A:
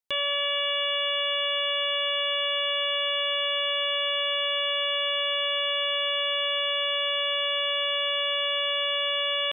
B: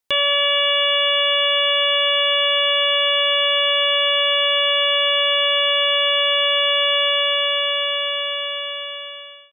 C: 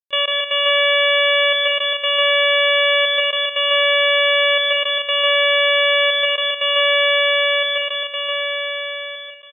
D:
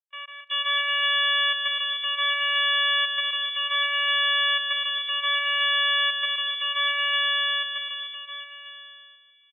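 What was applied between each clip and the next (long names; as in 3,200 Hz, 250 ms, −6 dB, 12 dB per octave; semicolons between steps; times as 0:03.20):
fade-out on the ending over 2.53 s; level +9 dB
gate pattern ".x..xxxxxxxx" 118 BPM −24 dB; loudspeakers that aren't time-aligned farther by 51 metres −2 dB, 64 metres −7 dB, 91 metres −11 dB
high-pass filter 1,000 Hz 24 dB per octave; multiband delay without the direct sound lows, highs 370 ms, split 2,600 Hz; expander for the loud parts 2.5 to 1, over −33 dBFS; level −3 dB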